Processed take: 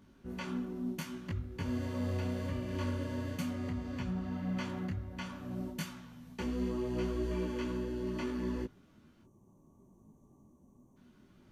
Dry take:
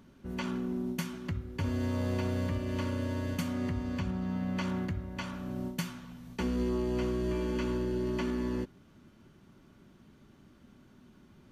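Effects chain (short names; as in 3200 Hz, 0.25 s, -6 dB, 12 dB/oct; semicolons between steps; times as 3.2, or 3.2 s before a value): spectral gain 9.23–10.97, 1200–5700 Hz -25 dB; detuned doubles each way 24 cents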